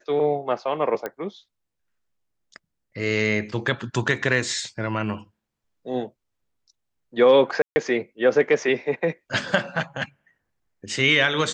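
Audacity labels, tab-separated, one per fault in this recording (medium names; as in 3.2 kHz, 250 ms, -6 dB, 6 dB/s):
1.060000	1.060000	pop -15 dBFS
7.620000	7.760000	dropout 140 ms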